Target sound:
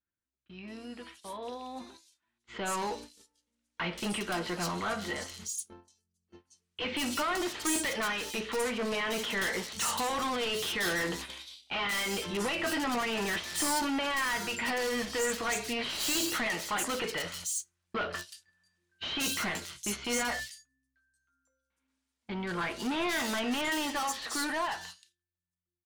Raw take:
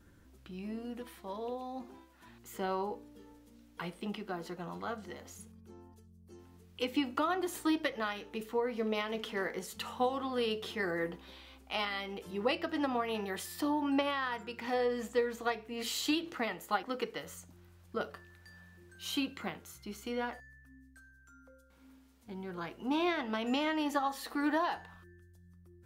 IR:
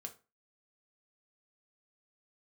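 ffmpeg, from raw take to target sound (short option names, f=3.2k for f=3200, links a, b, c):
-filter_complex "[0:a]agate=range=-33dB:threshold=-50dB:ratio=16:detection=peak,lowpass=f=10k:w=0.5412,lowpass=f=10k:w=1.3066,tiltshelf=f=1.3k:g=-8,dynaudnorm=f=450:g=13:m=14.5dB,asoftclip=type=tanh:threshold=-32dB,acrossover=split=3700[a][b];[b]adelay=180[c];[a][c]amix=inputs=2:normalize=0,asplit=2[d][e];[1:a]atrim=start_sample=2205,asetrate=61740,aresample=44100[f];[e][f]afir=irnorm=-1:irlink=0,volume=1dB[g];[d][g]amix=inputs=2:normalize=0"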